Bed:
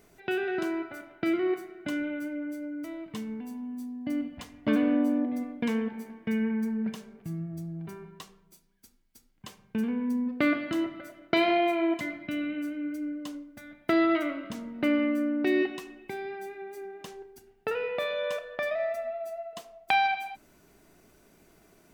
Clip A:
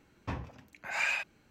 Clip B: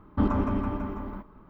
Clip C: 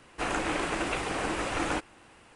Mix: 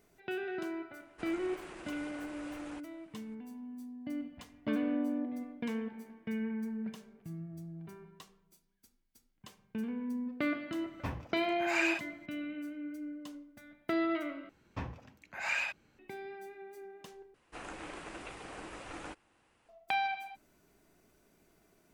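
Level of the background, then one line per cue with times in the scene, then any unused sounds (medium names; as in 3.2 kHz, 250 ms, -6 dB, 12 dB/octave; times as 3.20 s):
bed -8 dB
1.00 s: add C -15.5 dB + peak limiter -24 dBFS
10.76 s: add A -1 dB
14.49 s: replace with A -2.5 dB + treble shelf 8.2 kHz -3 dB
17.34 s: replace with C -15 dB
not used: B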